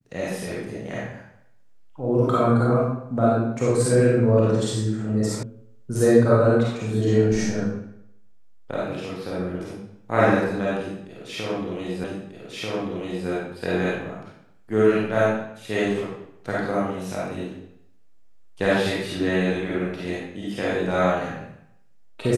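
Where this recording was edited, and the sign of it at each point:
5.43 s: sound stops dead
12.04 s: repeat of the last 1.24 s

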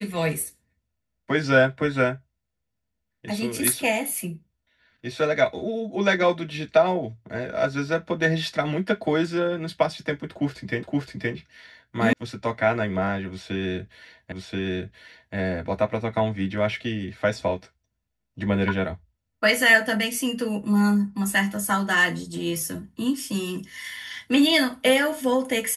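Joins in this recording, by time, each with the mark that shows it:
10.83 s: repeat of the last 0.52 s
12.13 s: sound stops dead
14.32 s: repeat of the last 1.03 s

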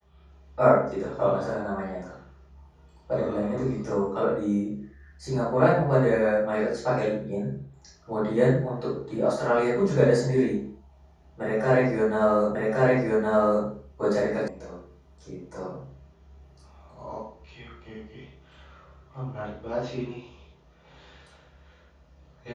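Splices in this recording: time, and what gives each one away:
12.55 s: repeat of the last 1.12 s
14.48 s: sound stops dead

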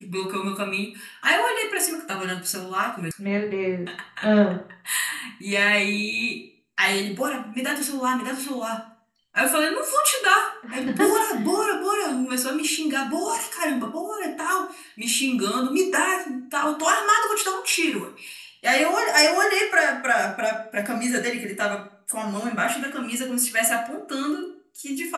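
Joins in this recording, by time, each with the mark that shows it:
3.11 s: sound stops dead

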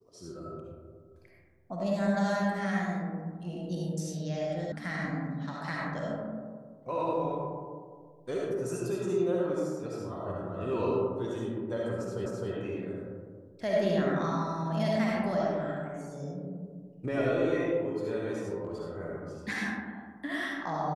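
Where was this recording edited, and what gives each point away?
4.72 s: sound stops dead
12.26 s: repeat of the last 0.26 s

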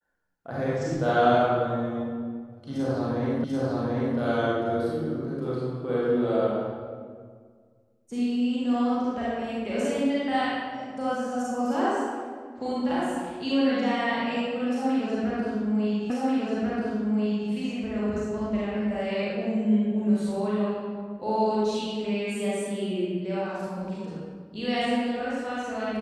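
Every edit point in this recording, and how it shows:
3.44 s: repeat of the last 0.74 s
16.10 s: repeat of the last 1.39 s

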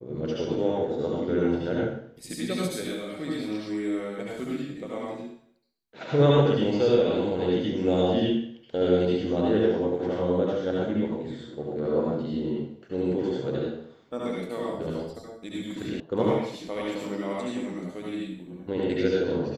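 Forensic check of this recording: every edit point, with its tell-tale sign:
16.00 s: sound stops dead

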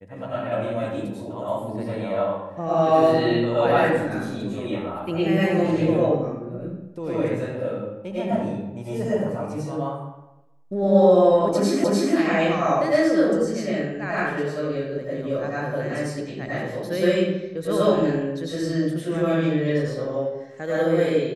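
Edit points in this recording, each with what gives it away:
11.84 s: repeat of the last 0.3 s

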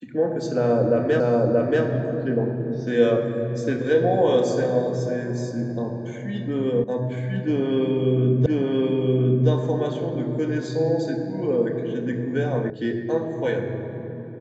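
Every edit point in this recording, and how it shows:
1.20 s: repeat of the last 0.63 s
6.84 s: sound stops dead
8.46 s: repeat of the last 1.02 s
12.70 s: sound stops dead

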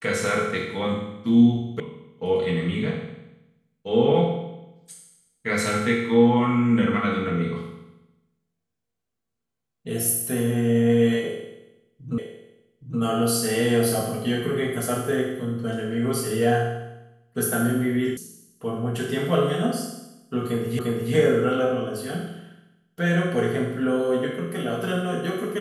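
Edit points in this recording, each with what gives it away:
1.80 s: sound stops dead
12.18 s: repeat of the last 0.82 s
18.17 s: sound stops dead
20.79 s: repeat of the last 0.35 s

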